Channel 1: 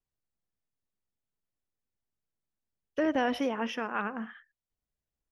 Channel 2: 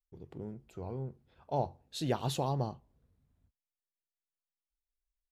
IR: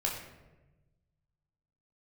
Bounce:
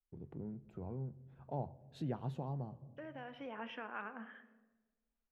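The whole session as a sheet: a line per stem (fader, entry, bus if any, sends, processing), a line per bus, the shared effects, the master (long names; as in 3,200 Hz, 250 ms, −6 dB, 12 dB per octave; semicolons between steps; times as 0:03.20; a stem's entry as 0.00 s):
0:03.33 −19 dB → 0:03.57 −8.5 dB, 0.00 s, send −13.5 dB, parametric band 3,200 Hz +10.5 dB 1.5 octaves
−2.5 dB, 0.00 s, send −22 dB, bass and treble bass +14 dB, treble +2 dB; automatic ducking −9 dB, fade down 0.85 s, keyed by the first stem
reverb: on, RT60 1.1 s, pre-delay 12 ms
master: three-way crossover with the lows and the highs turned down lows −14 dB, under 160 Hz, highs −21 dB, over 2,300 Hz; downward compressor 1.5 to 1, threshold −51 dBFS, peak gain reduction 9.5 dB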